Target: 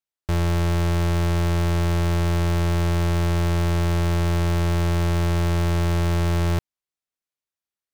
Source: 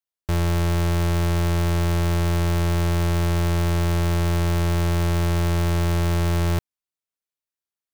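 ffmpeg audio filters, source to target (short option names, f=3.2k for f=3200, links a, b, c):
-af "highshelf=f=10k:g=-6.5"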